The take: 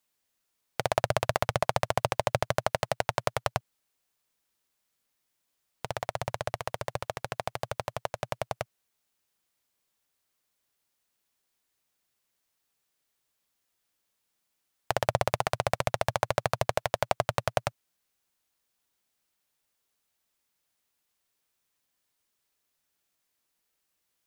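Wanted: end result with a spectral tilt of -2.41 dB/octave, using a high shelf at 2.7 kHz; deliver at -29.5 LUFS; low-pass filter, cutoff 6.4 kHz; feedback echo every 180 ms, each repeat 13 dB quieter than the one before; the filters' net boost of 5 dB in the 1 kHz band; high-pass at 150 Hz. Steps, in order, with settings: high-pass 150 Hz; low-pass 6.4 kHz; peaking EQ 1 kHz +7 dB; treble shelf 2.7 kHz -3 dB; feedback delay 180 ms, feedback 22%, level -13 dB; trim -1 dB

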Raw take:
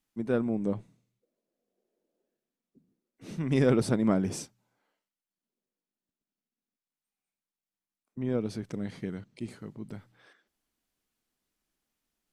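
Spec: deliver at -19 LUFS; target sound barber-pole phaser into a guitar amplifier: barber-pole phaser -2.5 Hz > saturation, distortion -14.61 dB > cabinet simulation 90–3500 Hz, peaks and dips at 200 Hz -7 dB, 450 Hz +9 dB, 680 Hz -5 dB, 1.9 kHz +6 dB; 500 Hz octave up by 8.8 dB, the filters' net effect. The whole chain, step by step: peaking EQ 500 Hz +4.5 dB; barber-pole phaser -2.5 Hz; saturation -21 dBFS; cabinet simulation 90–3500 Hz, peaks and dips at 200 Hz -7 dB, 450 Hz +9 dB, 680 Hz -5 dB, 1.9 kHz +6 dB; trim +11 dB

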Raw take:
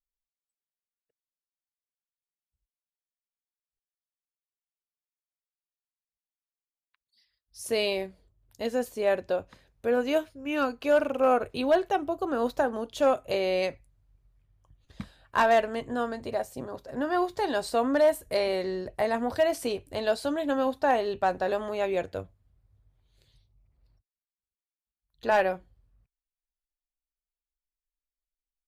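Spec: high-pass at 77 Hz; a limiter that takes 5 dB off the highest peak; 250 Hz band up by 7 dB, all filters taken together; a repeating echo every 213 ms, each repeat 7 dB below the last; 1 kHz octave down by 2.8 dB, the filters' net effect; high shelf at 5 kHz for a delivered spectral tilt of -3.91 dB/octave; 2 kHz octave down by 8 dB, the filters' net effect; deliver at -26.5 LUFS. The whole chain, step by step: high-pass 77 Hz; peaking EQ 250 Hz +8.5 dB; peaking EQ 1 kHz -3 dB; peaking EQ 2 kHz -9 dB; treble shelf 5 kHz -6.5 dB; peak limiter -18 dBFS; feedback delay 213 ms, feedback 45%, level -7 dB; trim +1 dB

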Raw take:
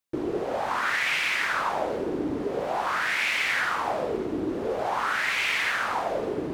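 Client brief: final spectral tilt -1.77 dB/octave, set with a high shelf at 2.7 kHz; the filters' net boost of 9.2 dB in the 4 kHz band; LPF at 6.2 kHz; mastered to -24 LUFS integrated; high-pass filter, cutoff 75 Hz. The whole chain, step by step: high-pass 75 Hz; low-pass 6.2 kHz; treble shelf 2.7 kHz +8.5 dB; peaking EQ 4 kHz +6 dB; trim -2 dB

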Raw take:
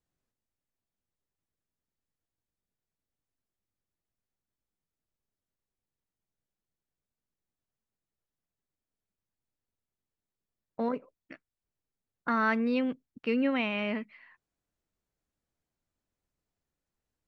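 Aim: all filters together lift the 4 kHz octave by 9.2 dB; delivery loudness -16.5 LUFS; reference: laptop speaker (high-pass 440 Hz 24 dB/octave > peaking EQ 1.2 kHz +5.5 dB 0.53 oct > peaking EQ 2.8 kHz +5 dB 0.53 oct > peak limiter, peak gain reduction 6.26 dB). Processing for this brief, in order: high-pass 440 Hz 24 dB/octave; peaking EQ 1.2 kHz +5.5 dB 0.53 oct; peaking EQ 2.8 kHz +5 dB 0.53 oct; peaking EQ 4 kHz +8 dB; trim +15 dB; peak limiter -3.5 dBFS

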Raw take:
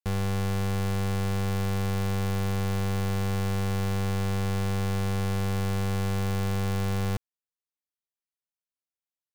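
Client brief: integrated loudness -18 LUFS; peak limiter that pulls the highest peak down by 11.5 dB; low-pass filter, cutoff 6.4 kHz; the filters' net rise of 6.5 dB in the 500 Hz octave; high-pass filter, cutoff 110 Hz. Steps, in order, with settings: high-pass 110 Hz; low-pass 6.4 kHz; peaking EQ 500 Hz +7.5 dB; trim +22 dB; peak limiter -7.5 dBFS

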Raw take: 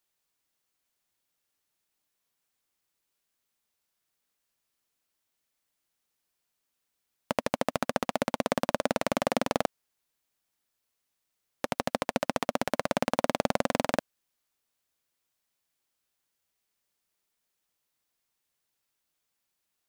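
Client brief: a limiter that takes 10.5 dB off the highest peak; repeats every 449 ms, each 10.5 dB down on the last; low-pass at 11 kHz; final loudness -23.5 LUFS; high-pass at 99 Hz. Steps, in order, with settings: high-pass 99 Hz; low-pass 11 kHz; peak limiter -18 dBFS; feedback delay 449 ms, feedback 30%, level -10.5 dB; trim +16.5 dB

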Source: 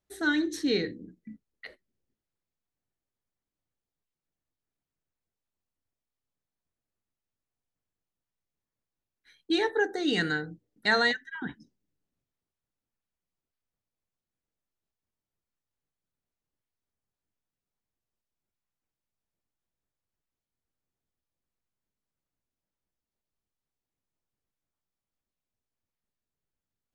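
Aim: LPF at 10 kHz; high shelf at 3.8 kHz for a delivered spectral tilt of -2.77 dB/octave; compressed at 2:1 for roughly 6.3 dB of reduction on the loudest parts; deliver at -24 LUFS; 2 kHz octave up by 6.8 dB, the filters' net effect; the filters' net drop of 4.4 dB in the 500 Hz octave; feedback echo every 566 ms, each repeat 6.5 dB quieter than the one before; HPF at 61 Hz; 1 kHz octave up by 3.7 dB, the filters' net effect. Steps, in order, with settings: high-pass 61 Hz; low-pass 10 kHz; peaking EQ 500 Hz -7 dB; peaking EQ 1 kHz +4.5 dB; peaking EQ 2 kHz +6 dB; treble shelf 3.8 kHz +6 dB; compression 2:1, threshold -25 dBFS; feedback delay 566 ms, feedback 47%, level -6.5 dB; trim +5 dB

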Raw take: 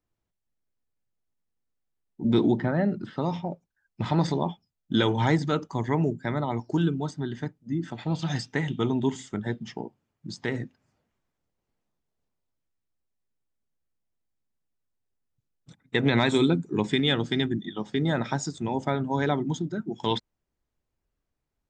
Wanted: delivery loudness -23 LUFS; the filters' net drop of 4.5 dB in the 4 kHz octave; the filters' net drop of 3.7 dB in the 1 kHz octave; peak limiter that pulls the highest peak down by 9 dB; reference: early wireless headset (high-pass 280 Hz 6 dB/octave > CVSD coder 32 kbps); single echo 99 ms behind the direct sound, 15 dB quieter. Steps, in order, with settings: peaking EQ 1 kHz -4 dB; peaking EQ 4 kHz -5 dB; peak limiter -19.5 dBFS; high-pass 280 Hz 6 dB/octave; delay 99 ms -15 dB; CVSD coder 32 kbps; trim +11.5 dB

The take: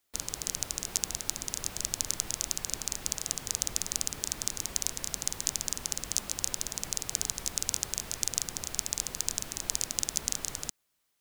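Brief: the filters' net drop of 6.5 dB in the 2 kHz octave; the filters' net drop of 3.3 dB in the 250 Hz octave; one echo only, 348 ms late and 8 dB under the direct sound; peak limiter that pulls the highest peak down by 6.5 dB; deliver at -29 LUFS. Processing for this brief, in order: peaking EQ 250 Hz -4.5 dB; peaking EQ 2 kHz -8.5 dB; peak limiter -10 dBFS; delay 348 ms -8 dB; trim +5.5 dB

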